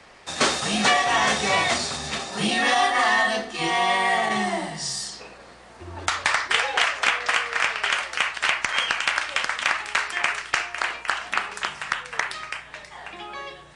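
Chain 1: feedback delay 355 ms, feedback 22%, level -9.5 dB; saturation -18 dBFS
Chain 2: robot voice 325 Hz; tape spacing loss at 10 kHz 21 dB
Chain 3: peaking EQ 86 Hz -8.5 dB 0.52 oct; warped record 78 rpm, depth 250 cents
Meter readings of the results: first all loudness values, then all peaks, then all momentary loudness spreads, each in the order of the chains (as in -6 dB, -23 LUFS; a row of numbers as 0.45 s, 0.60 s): -25.0 LUFS, -29.0 LUFS, -23.0 LUFS; -18.0 dBFS, -7.0 dBFS, -7.5 dBFS; 13 LU, 16 LU, 15 LU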